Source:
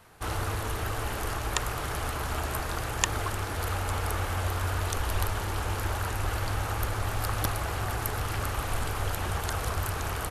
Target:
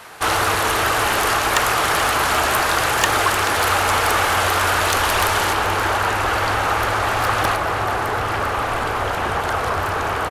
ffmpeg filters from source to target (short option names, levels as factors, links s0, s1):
-filter_complex "[0:a]asetnsamples=n=441:p=0,asendcmd='5.53 lowpass f 2300;7.56 lowpass f 1100',asplit=2[s0][s1];[s1]highpass=f=720:p=1,volume=15.8,asoftclip=type=tanh:threshold=0.596[s2];[s0][s2]amix=inputs=2:normalize=0,lowpass=f=7200:p=1,volume=0.501,aecho=1:1:433:0.237,volume=1.12"